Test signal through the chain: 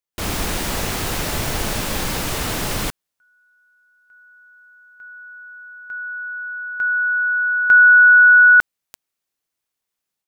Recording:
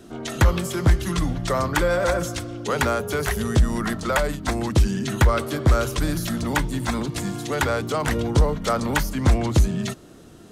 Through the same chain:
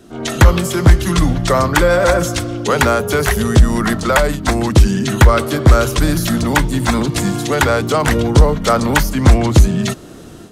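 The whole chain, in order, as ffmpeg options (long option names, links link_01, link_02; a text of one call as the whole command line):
ffmpeg -i in.wav -af "dynaudnorm=framelen=120:gausssize=3:maxgain=9dB,volume=1.5dB" out.wav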